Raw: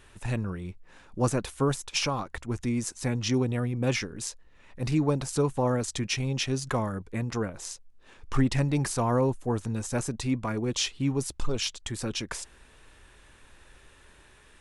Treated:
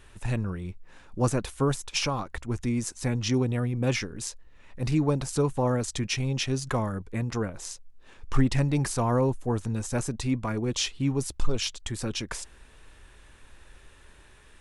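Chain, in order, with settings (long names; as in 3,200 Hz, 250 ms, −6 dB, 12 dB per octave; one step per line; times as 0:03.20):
low-shelf EQ 81 Hz +5.5 dB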